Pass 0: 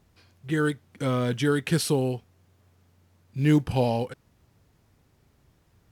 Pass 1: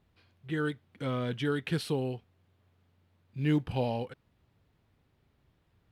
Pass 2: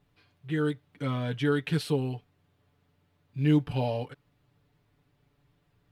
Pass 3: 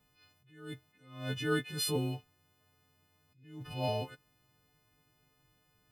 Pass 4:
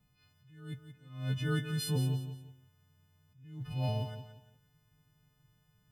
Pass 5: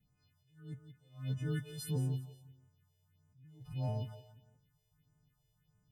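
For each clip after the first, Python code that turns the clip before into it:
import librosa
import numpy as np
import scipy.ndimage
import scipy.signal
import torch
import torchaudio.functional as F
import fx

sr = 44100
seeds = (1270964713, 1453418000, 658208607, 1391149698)

y1 = fx.high_shelf_res(x, sr, hz=4700.0, db=-7.5, q=1.5)
y1 = y1 * 10.0 ** (-7.0 / 20.0)
y2 = y1 + 0.71 * np.pad(y1, (int(6.9 * sr / 1000.0), 0))[:len(y1)]
y3 = fx.freq_snap(y2, sr, grid_st=3)
y3 = fx.attack_slew(y3, sr, db_per_s=100.0)
y3 = y3 * 10.0 ** (-3.0 / 20.0)
y4 = fx.low_shelf_res(y3, sr, hz=240.0, db=8.5, q=1.5)
y4 = fx.echo_feedback(y4, sr, ms=175, feedback_pct=31, wet_db=-10)
y4 = y4 * 10.0 ** (-5.0 / 20.0)
y5 = fx.phaser_stages(y4, sr, stages=4, low_hz=200.0, high_hz=3900.0, hz=1.6, feedback_pct=25)
y5 = y5 * 10.0 ** (-4.5 / 20.0)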